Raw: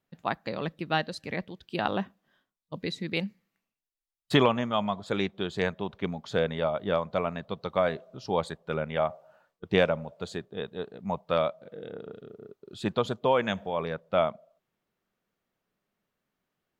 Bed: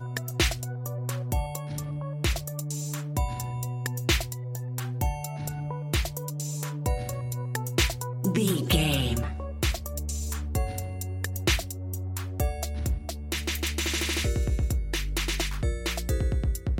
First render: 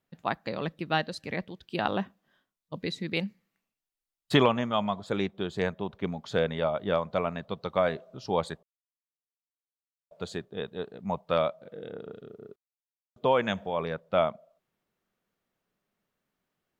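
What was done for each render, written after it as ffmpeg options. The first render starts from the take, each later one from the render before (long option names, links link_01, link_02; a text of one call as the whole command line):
ffmpeg -i in.wav -filter_complex "[0:a]asettb=1/sr,asplit=3[link_01][link_02][link_03];[link_01]atrim=end=5.064[link_04];[link_02]atrim=start=5.06:end=6.07,asetpts=PTS-STARTPTS,afade=type=in:duration=0.004:curve=qsin,afade=type=out:start_time=1.006:duration=0.004:curve=qsin,equalizer=frequency=3200:width_type=o:width=2.7:gain=-3.5[link_05];[link_03]atrim=start=6.066[link_06];[link_04][link_05]acrossfade=duration=0.004:curve1=hsin:curve2=qsin[link_07];[link_07][link_06]acrossfade=duration=0.004:curve1=qsin:curve2=hsin,asplit=5[link_08][link_09][link_10][link_11][link_12];[link_08]atrim=end=8.63,asetpts=PTS-STARTPTS,afade=type=out:start_time=8.626:duration=0.004:curve=hsin[link_13];[link_09]atrim=start=8.63:end=10.11,asetpts=PTS-STARTPTS,volume=0[link_14];[link_10]atrim=start=10.11:end=12.56,asetpts=PTS-STARTPTS,afade=type=in:duration=0.004:curve=hsin,afade=type=out:start_time=2.446:duration=0.004:curve=hsin[link_15];[link_11]atrim=start=12.56:end=13.16,asetpts=PTS-STARTPTS,volume=0[link_16];[link_12]atrim=start=13.16,asetpts=PTS-STARTPTS,afade=type=in:duration=0.004:curve=hsin[link_17];[link_13][link_14][link_15][link_16][link_17]concat=n=5:v=0:a=1" out.wav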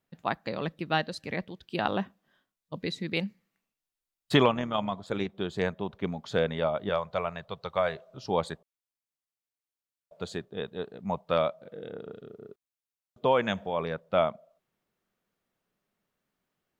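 ffmpeg -i in.wav -filter_complex "[0:a]asplit=3[link_01][link_02][link_03];[link_01]afade=type=out:start_time=4.49:duration=0.02[link_04];[link_02]tremolo=f=81:d=0.462,afade=type=in:start_time=4.49:duration=0.02,afade=type=out:start_time=5.28:duration=0.02[link_05];[link_03]afade=type=in:start_time=5.28:duration=0.02[link_06];[link_04][link_05][link_06]amix=inputs=3:normalize=0,asettb=1/sr,asplit=3[link_07][link_08][link_09];[link_07]atrim=end=6.894[link_10];[link_08]atrim=start=6.89:end=8.17,asetpts=PTS-STARTPTS,afade=type=in:duration=0.004:curve=qsin,afade=type=out:start_time=1.276:duration=0.004:curve=qsin,equalizer=frequency=260:width=1.5:gain=-13.5[link_11];[link_09]atrim=start=8.166[link_12];[link_10][link_11]acrossfade=duration=0.004:curve1=hsin:curve2=qsin[link_13];[link_13][link_12]acrossfade=duration=0.004:curve1=qsin:curve2=hsin" out.wav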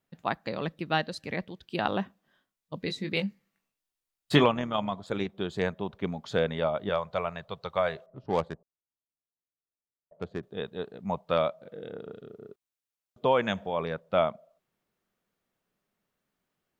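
ffmpeg -i in.wav -filter_complex "[0:a]asettb=1/sr,asplit=3[link_01][link_02][link_03];[link_01]atrim=end=2.864[link_04];[link_02]atrim=start=2.86:end=4.44,asetpts=PTS-STARTPTS,afade=type=in:duration=0.004:curve=qsin,afade=type=out:start_time=1.576:duration=0.004:curve=qsin,asplit=2[link_05][link_06];[link_06]adelay=20,volume=-7dB[link_07];[link_05][link_07]amix=inputs=2:normalize=0,atrim=end_sample=69678[link_08];[link_03]atrim=start=4.436[link_09];[link_04][link_08]acrossfade=duration=0.004:curve1=hsin:curve2=qsin[link_10];[link_10][link_09]acrossfade=duration=0.004:curve1=qsin:curve2=hsin,asettb=1/sr,asplit=3[link_11][link_12][link_13];[link_11]atrim=end=8.064[link_14];[link_12]atrim=start=8.06:end=10.43,asetpts=PTS-STARTPTS,afade=type=in:duration=0.004:curve=qsin,afade=type=out:start_time=2.366:duration=0.004:curve=qsin,adynamicsmooth=sensitivity=3:basefreq=820[link_15];[link_13]atrim=start=10.426[link_16];[link_14][link_15]acrossfade=duration=0.004:curve1=hsin:curve2=qsin[link_17];[link_17][link_16]acrossfade=duration=0.004:curve1=qsin:curve2=hsin" out.wav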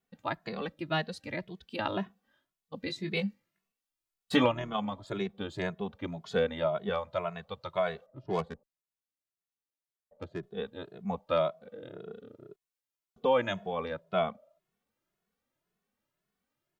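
ffmpeg -i in.wav -filter_complex "[0:a]asplit=2[link_01][link_02];[link_02]adelay=2.3,afreqshift=1.9[link_03];[link_01][link_03]amix=inputs=2:normalize=1" out.wav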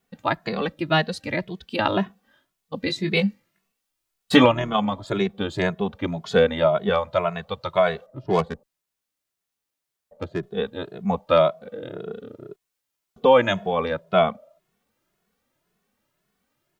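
ffmpeg -i in.wav -af "volume=10.5dB,alimiter=limit=-2dB:level=0:latency=1" out.wav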